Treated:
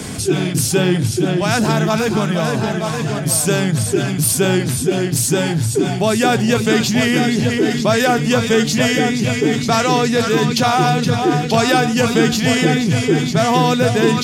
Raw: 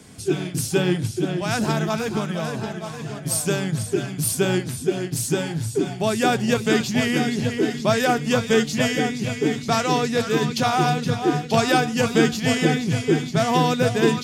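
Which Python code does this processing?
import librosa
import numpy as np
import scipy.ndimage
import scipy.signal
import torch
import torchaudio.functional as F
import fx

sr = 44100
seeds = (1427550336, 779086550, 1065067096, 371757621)

y = fx.env_flatten(x, sr, amount_pct=50)
y = y * librosa.db_to_amplitude(2.5)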